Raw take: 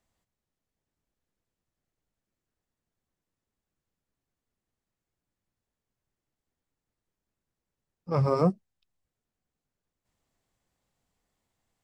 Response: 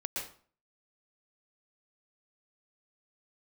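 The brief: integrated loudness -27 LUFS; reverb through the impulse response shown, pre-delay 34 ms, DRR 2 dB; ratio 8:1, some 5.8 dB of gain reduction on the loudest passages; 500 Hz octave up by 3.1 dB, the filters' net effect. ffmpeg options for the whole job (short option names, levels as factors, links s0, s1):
-filter_complex "[0:a]equalizer=f=500:t=o:g=3.5,acompressor=threshold=0.0794:ratio=8,asplit=2[s0][s1];[1:a]atrim=start_sample=2205,adelay=34[s2];[s1][s2]afir=irnorm=-1:irlink=0,volume=0.562[s3];[s0][s3]amix=inputs=2:normalize=0,volume=1.12"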